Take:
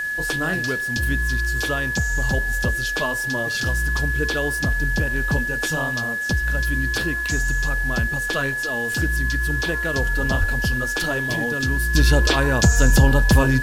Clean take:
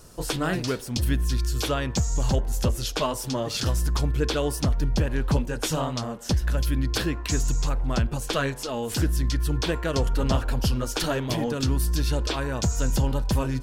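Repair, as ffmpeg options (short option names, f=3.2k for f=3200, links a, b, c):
-filter_complex "[0:a]bandreject=f=1.7k:w=30,asplit=3[a][b][c];[a]afade=t=out:st=10.39:d=0.02[d];[b]highpass=f=140:w=0.5412,highpass=f=140:w=1.3066,afade=t=in:st=10.39:d=0.02,afade=t=out:st=10.51:d=0.02[e];[c]afade=t=in:st=10.51:d=0.02[f];[d][e][f]amix=inputs=3:normalize=0,afwtdn=0.0063,asetnsamples=n=441:p=0,asendcmd='11.95 volume volume -8.5dB',volume=0dB"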